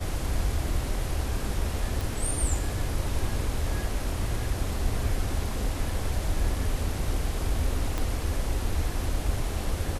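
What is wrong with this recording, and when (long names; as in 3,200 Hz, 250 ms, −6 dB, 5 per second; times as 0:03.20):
0:02.01: click
0:07.98: click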